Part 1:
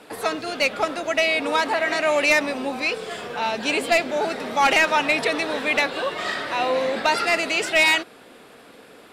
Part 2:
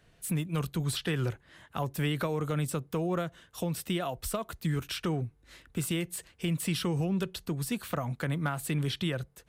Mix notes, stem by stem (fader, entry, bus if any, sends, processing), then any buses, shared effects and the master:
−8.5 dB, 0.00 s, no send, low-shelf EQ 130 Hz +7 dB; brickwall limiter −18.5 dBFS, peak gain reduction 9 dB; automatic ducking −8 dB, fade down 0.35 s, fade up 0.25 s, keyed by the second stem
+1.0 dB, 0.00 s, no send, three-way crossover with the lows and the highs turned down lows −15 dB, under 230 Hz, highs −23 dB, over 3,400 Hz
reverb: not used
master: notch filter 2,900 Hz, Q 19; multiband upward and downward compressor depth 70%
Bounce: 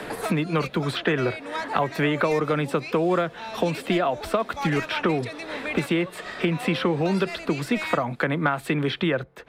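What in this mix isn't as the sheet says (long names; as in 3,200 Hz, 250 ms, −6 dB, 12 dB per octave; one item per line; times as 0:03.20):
stem 1: missing brickwall limiter −18.5 dBFS, peak gain reduction 9 dB
stem 2 +1.0 dB → +11.5 dB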